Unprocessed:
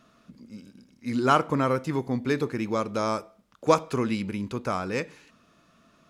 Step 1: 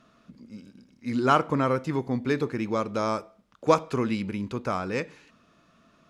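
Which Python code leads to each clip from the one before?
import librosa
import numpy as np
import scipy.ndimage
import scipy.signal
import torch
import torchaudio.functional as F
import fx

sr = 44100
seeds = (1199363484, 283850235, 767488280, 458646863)

y = fx.high_shelf(x, sr, hz=9200.0, db=-10.5)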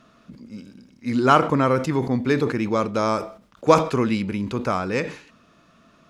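y = fx.sustainer(x, sr, db_per_s=120.0)
y = y * librosa.db_to_amplitude(5.0)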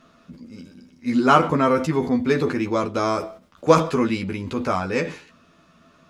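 y = fx.doubler(x, sr, ms=12.0, db=-3.5)
y = y * librosa.db_to_amplitude(-1.0)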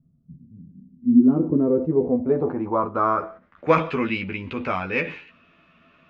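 y = fx.filter_sweep_lowpass(x, sr, from_hz=140.0, to_hz=2600.0, start_s=0.53, end_s=3.91, q=3.3)
y = y * librosa.db_to_amplitude(-4.0)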